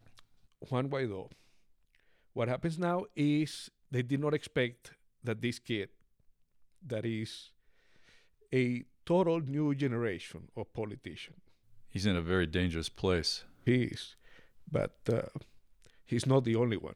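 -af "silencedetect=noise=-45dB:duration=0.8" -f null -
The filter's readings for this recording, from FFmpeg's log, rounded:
silence_start: 1.32
silence_end: 2.36 | silence_duration: 1.04
silence_start: 5.85
silence_end: 6.85 | silence_duration: 0.99
silence_start: 7.43
silence_end: 8.53 | silence_duration: 1.09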